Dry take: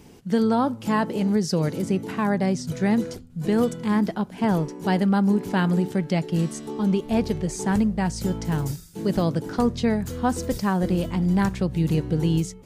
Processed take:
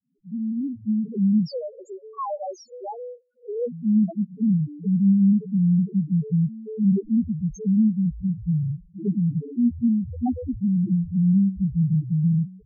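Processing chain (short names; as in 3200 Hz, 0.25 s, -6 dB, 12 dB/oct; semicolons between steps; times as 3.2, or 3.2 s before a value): opening faded in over 1.13 s; 1.46–3.68 HPF 510 Hz 24 dB/oct; loudest bins only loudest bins 1; gain +7.5 dB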